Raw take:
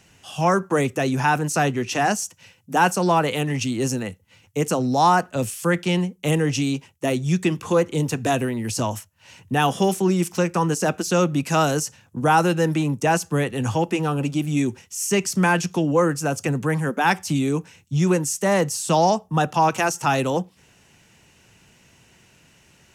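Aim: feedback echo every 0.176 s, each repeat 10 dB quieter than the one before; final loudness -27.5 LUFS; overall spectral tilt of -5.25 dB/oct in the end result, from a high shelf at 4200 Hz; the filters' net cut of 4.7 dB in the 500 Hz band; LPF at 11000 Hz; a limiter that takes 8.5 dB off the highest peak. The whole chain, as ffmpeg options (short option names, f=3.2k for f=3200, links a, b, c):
-af "lowpass=11k,equalizer=f=500:t=o:g=-6,highshelf=f=4.2k:g=-4,alimiter=limit=-16dB:level=0:latency=1,aecho=1:1:176|352|528|704:0.316|0.101|0.0324|0.0104,volume=-2dB"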